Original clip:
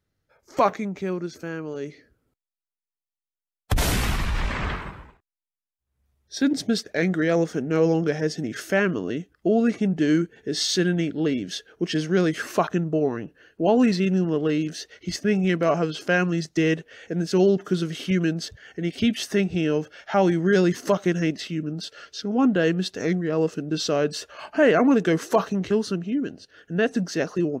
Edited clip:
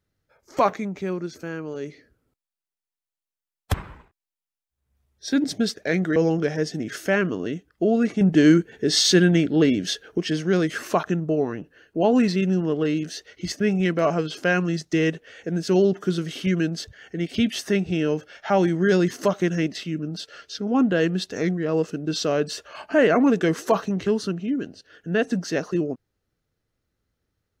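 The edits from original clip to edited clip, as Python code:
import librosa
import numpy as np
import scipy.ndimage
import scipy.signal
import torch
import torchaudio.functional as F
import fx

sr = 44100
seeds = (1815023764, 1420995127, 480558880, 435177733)

y = fx.edit(x, sr, fx.cut(start_s=3.74, length_s=1.09),
    fx.cut(start_s=7.25, length_s=0.55),
    fx.clip_gain(start_s=9.85, length_s=1.97, db=5.5), tone=tone)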